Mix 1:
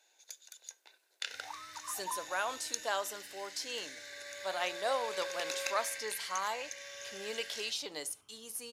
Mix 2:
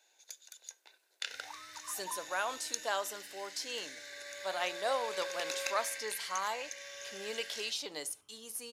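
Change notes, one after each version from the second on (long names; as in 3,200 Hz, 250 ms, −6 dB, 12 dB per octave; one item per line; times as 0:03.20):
second sound −3.5 dB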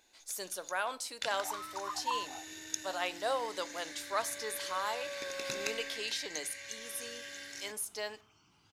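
speech: entry −1.60 s
first sound: remove Chebyshev high-pass filter 450 Hz, order 3
second sound +9.0 dB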